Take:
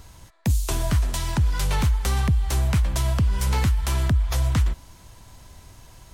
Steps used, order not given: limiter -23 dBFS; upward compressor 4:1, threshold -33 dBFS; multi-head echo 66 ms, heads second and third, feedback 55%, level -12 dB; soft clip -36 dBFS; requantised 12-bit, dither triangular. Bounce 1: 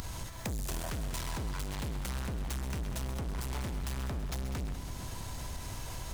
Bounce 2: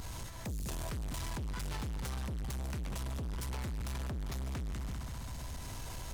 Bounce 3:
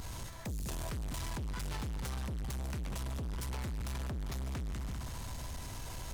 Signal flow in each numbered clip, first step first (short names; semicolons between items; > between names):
requantised > soft clip > multi-head echo > upward compressor > limiter; multi-head echo > upward compressor > limiter > requantised > soft clip; upward compressor > multi-head echo > limiter > requantised > soft clip